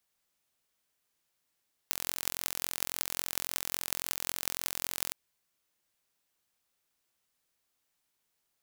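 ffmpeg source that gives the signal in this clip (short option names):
-f lavfi -i "aevalsrc='0.841*eq(mod(n,1011),0)*(0.5+0.5*eq(mod(n,8088),0))':d=3.23:s=44100"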